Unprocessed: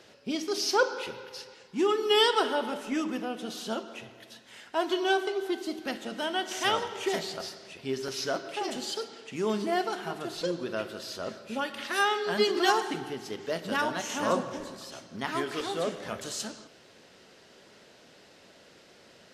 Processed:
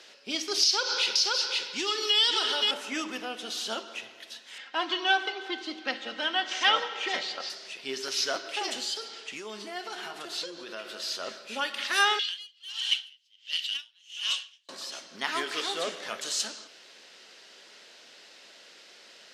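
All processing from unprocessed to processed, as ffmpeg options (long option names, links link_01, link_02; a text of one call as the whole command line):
ffmpeg -i in.wav -filter_complex "[0:a]asettb=1/sr,asplit=3[link_01][link_02][link_03];[link_01]atrim=end=0.634[link_04];[link_02]atrim=start=0.63:end=2.71,asetpts=PTS-STARTPTS,afade=type=in:duration=0.004:curve=qsin,afade=type=out:start_time=2.076:duration=0.004:curve=qsin,equalizer=frequency=4400:width_type=o:width=1.8:gain=12.5,aecho=1:1:524:0.531,atrim=end_sample=91728,acompressor=threshold=-27dB:ratio=5:attack=3.2:release=140:knee=1:detection=peak[link_05];[link_03]atrim=start=2.706[link_06];[link_04][link_05]acrossfade=duration=0.004:curve1=hsin:curve2=qsin[link_07];[link_07][link_06]acrossfade=duration=0.004:curve1=qsin:curve2=hsin,asettb=1/sr,asplit=3[link_08][link_09][link_10];[link_08]atrim=end=4.584[link_11];[link_09]atrim=start=4.58:end=7.5,asetpts=PTS-STARTPTS,afade=type=in:duration=0.004:curve=qsin,afade=type=out:start_time=2.916:duration=0.004:curve=qsin,highpass=200,lowpass=3800,aecho=1:1:3.8:0.56,atrim=end_sample=128772[link_12];[link_10]atrim=start=7.496[link_13];[link_11][link_12]acrossfade=duration=0.004:curve1=hsin:curve2=qsin[link_14];[link_14][link_13]acrossfade=duration=0.004:curve1=qsin:curve2=hsin,asettb=1/sr,asplit=3[link_15][link_16][link_17];[link_15]atrim=end=8.804[link_18];[link_16]atrim=start=8.8:end=11.08,asetpts=PTS-STARTPTS,afade=type=in:duration=0.004:curve=qsin,afade=type=out:start_time=2.276:duration=0.004:curve=qsin,acompressor=threshold=-35dB:ratio=4:attack=3.2:release=140:knee=1:detection=peak,asplit=2[link_19][link_20];[link_20]adelay=14,volume=-10.5dB[link_21];[link_19][link_21]amix=inputs=2:normalize=0,atrim=end_sample=100548[link_22];[link_17]atrim=start=11.076[link_23];[link_18][link_22]acrossfade=duration=0.004:curve1=hsin:curve2=qsin[link_24];[link_24][link_23]acrossfade=duration=0.004:curve1=qsin:curve2=hsin,asettb=1/sr,asplit=3[link_25][link_26][link_27];[link_25]atrim=end=12.194[link_28];[link_26]atrim=start=12.19:end=14.69,asetpts=PTS-STARTPTS,afade=type=in:duration=0.004:curve=qsin,afade=type=out:start_time=2.496:duration=0.004:curve=qsin,highpass=frequency=3000:width_type=q:width=6.3,aeval=exprs='(tanh(7.94*val(0)+0.3)-tanh(0.3))/7.94':channel_layout=same,aeval=exprs='val(0)*pow(10,-36*(0.5-0.5*cos(2*PI*1.4*n/s))/20)':channel_layout=same[link_29];[link_27]atrim=start=14.686[link_30];[link_28][link_29]acrossfade=duration=0.004:curve1=hsin:curve2=qsin[link_31];[link_31][link_30]acrossfade=duration=0.004:curve1=qsin:curve2=hsin,highpass=270,equalizer=frequency=4000:width=0.31:gain=12.5,volume=-5dB" out.wav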